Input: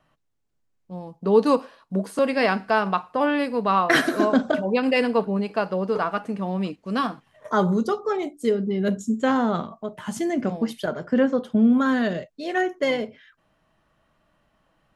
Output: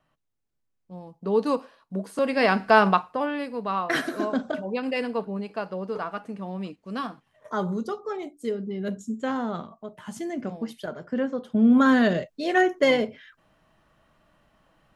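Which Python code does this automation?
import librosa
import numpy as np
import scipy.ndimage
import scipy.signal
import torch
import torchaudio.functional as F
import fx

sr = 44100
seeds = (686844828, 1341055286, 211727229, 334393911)

y = fx.gain(x, sr, db=fx.line((2.05, -5.5), (2.85, 5.5), (3.29, -7.0), (11.4, -7.0), (11.81, 3.0)))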